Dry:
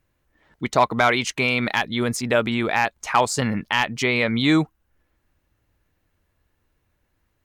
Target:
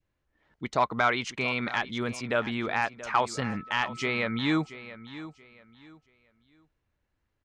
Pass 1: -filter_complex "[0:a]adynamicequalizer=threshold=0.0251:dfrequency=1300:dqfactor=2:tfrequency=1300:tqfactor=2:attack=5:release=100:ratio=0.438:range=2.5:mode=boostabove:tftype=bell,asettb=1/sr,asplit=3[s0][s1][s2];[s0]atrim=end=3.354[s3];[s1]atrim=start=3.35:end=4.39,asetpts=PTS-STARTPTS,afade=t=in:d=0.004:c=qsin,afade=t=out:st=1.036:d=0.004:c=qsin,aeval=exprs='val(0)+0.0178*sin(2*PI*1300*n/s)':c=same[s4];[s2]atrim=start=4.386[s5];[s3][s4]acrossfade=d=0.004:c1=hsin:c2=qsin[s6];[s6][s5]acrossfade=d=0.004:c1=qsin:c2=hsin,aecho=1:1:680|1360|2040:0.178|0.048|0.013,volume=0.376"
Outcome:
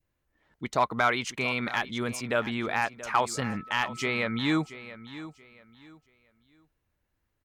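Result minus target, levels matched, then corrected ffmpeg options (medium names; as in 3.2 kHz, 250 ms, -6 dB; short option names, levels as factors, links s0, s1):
8 kHz band +4.0 dB
-filter_complex "[0:a]adynamicequalizer=threshold=0.0251:dfrequency=1300:dqfactor=2:tfrequency=1300:tqfactor=2:attack=5:release=100:ratio=0.438:range=2.5:mode=boostabove:tftype=bell,lowpass=6200,asettb=1/sr,asplit=3[s0][s1][s2];[s0]atrim=end=3.354[s3];[s1]atrim=start=3.35:end=4.39,asetpts=PTS-STARTPTS,afade=t=in:d=0.004:c=qsin,afade=t=out:st=1.036:d=0.004:c=qsin,aeval=exprs='val(0)+0.0178*sin(2*PI*1300*n/s)':c=same[s4];[s2]atrim=start=4.386[s5];[s3][s4]acrossfade=d=0.004:c1=hsin:c2=qsin[s6];[s6][s5]acrossfade=d=0.004:c1=qsin:c2=hsin,aecho=1:1:680|1360|2040:0.178|0.048|0.013,volume=0.376"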